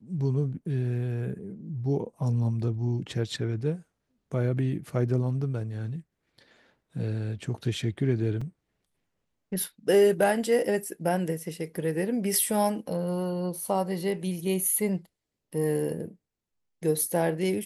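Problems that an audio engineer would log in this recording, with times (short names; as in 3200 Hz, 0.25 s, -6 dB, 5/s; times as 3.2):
8.41 gap 4.4 ms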